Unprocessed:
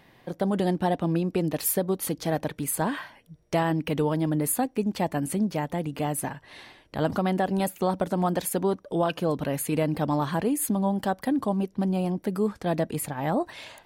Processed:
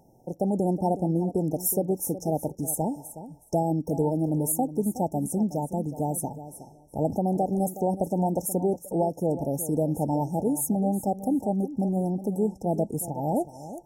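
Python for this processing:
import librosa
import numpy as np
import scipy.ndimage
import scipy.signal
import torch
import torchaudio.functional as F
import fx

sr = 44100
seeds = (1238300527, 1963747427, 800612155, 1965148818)

y = fx.brickwall_bandstop(x, sr, low_hz=920.0, high_hz=5200.0)
y = fx.echo_feedback(y, sr, ms=368, feedback_pct=16, wet_db=-13.5)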